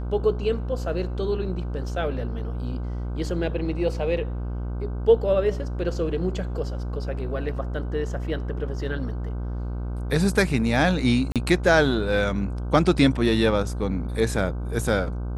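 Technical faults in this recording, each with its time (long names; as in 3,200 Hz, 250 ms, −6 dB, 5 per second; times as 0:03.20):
mains buzz 60 Hz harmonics 26 −29 dBFS
0:11.32–0:11.36: drop-out 37 ms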